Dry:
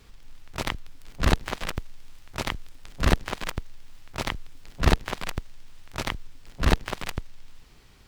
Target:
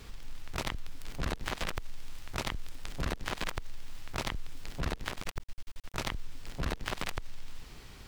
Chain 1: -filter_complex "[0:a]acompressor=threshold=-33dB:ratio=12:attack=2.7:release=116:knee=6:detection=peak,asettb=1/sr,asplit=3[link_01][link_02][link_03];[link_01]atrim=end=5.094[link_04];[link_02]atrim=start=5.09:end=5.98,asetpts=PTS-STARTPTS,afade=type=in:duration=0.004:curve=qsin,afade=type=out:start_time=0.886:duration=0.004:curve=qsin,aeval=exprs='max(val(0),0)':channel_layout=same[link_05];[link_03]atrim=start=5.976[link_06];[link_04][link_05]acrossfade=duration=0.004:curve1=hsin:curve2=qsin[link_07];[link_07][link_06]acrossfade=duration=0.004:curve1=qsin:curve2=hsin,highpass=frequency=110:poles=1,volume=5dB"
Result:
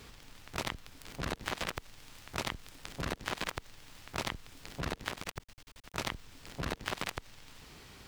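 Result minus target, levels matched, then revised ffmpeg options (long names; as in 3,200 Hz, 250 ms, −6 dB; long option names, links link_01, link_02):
125 Hz band −3.0 dB
-filter_complex "[0:a]acompressor=threshold=-33dB:ratio=12:attack=2.7:release=116:knee=6:detection=peak,asettb=1/sr,asplit=3[link_01][link_02][link_03];[link_01]atrim=end=5.094[link_04];[link_02]atrim=start=5.09:end=5.98,asetpts=PTS-STARTPTS,afade=type=in:duration=0.004:curve=qsin,afade=type=out:start_time=0.886:duration=0.004:curve=qsin,aeval=exprs='max(val(0),0)':channel_layout=same[link_05];[link_03]atrim=start=5.976[link_06];[link_04][link_05]acrossfade=duration=0.004:curve1=hsin:curve2=qsin[link_07];[link_07][link_06]acrossfade=duration=0.004:curve1=qsin:curve2=hsin,volume=5dB"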